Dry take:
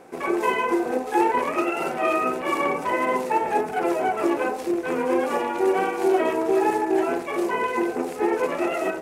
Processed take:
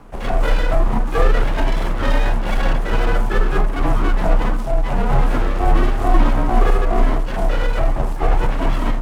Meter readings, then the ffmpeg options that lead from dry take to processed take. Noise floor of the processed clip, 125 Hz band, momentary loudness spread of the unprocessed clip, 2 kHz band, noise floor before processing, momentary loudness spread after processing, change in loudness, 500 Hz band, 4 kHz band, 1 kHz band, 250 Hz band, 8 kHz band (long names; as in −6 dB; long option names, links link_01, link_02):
−22 dBFS, +24.5 dB, 4 LU, +1.5 dB, −33 dBFS, 4 LU, +3.0 dB, −1.5 dB, +6.5 dB, −0.5 dB, 0.0 dB, 0.0 dB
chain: -af "aeval=exprs='abs(val(0))':channel_layout=same,afreqshift=-32,tiltshelf=frequency=910:gain=6,volume=4dB"